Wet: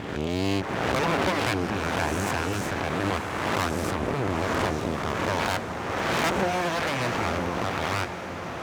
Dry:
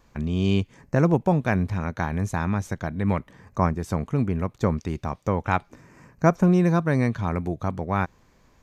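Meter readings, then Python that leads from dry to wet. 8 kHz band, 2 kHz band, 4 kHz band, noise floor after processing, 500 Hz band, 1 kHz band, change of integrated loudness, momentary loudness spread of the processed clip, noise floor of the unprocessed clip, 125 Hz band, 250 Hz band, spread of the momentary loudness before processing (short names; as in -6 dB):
+9.0 dB, +5.5 dB, +11.5 dB, -34 dBFS, -0.5 dB, +2.0 dB, -2.0 dB, 4 LU, -60 dBFS, -7.5 dB, -5.5 dB, 9 LU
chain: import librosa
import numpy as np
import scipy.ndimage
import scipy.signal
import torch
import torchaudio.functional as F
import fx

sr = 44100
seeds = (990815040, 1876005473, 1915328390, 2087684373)

p1 = fx.spec_swells(x, sr, rise_s=1.52)
p2 = fx.cheby_harmonics(p1, sr, harmonics=(6,), levels_db=(-11,), full_scale_db=0.5)
p3 = np.abs(p2)
p4 = p3 + fx.echo_diffused(p3, sr, ms=916, feedback_pct=53, wet_db=-11.0, dry=0)
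p5 = 10.0 ** (-12.5 / 20.0) * np.tanh(p4 / 10.0 ** (-12.5 / 20.0))
p6 = scipy.signal.sosfilt(scipy.signal.butter(2, 81.0, 'highpass', fs=sr, output='sos'), p5)
y = F.gain(torch.from_numpy(p6), 1.5).numpy()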